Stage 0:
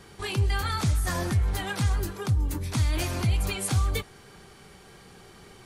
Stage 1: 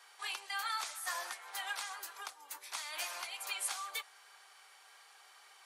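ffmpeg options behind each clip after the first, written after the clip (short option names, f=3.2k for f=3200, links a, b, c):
-af "highpass=f=770:w=0.5412,highpass=f=770:w=1.3066,volume=-5.5dB"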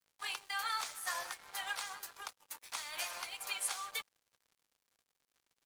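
-af "aeval=exprs='sgn(val(0))*max(abs(val(0))-0.00224,0)':c=same,equalizer=f=490:w=6.3:g=3.5,volume=1.5dB"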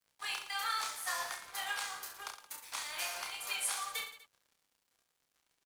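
-af "aecho=1:1:30|67.5|114.4|173|246.2:0.631|0.398|0.251|0.158|0.1"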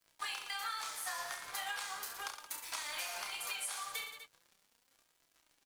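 -af "acompressor=threshold=-44dB:ratio=5,flanger=delay=3:depth=4.1:regen=64:speed=0.38:shape=sinusoidal,volume=10dB"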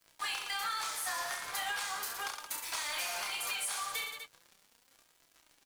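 -af "asoftclip=type=tanh:threshold=-36dB,volume=6.5dB"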